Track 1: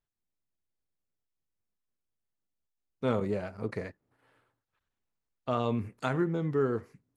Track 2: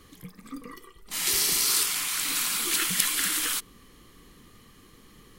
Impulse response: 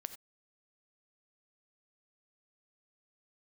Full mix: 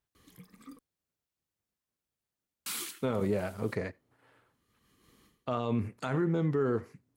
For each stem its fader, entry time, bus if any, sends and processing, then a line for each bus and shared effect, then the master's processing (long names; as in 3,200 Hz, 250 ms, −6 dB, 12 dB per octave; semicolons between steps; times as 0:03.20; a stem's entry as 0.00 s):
+2.0 dB, 0.00 s, send −14 dB, no processing
−6.5 dB, 0.15 s, muted 0:00.79–0:02.66, no send, amplitude modulation by smooth noise, depth 50%; automatic ducking −23 dB, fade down 0.20 s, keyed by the first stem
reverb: on, pre-delay 3 ms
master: high-pass filter 43 Hz; brickwall limiter −20.5 dBFS, peak gain reduction 9 dB